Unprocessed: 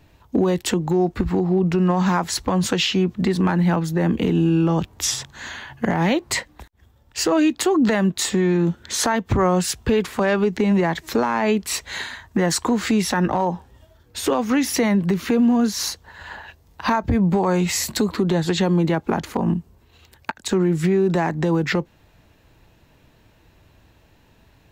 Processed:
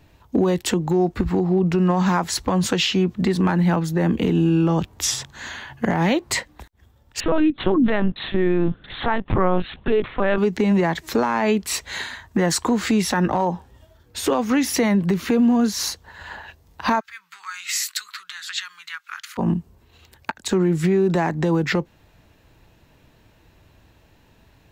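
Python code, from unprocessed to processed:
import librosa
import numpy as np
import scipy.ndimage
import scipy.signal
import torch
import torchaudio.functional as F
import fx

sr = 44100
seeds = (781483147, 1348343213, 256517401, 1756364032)

y = fx.lpc_vocoder(x, sr, seeds[0], excitation='pitch_kept', order=10, at=(7.2, 10.38))
y = fx.ellip_highpass(y, sr, hz=1300.0, order=4, stop_db=50, at=(16.99, 19.37), fade=0.02)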